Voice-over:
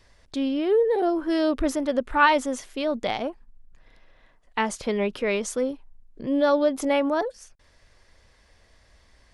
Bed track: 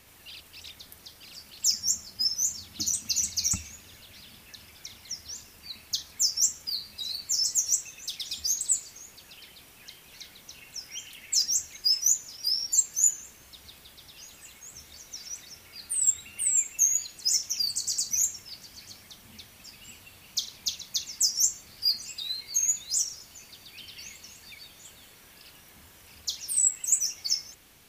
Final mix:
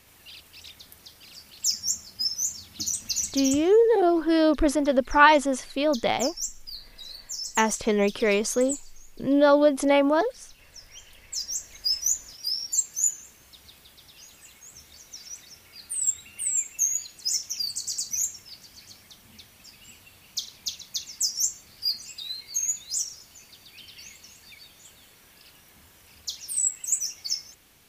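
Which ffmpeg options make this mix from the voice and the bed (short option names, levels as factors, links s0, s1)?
-filter_complex "[0:a]adelay=3000,volume=1.33[s0];[1:a]volume=1.88,afade=t=out:st=3.23:d=0.46:silence=0.446684,afade=t=in:st=11.37:d=0.46:silence=0.501187[s1];[s0][s1]amix=inputs=2:normalize=0"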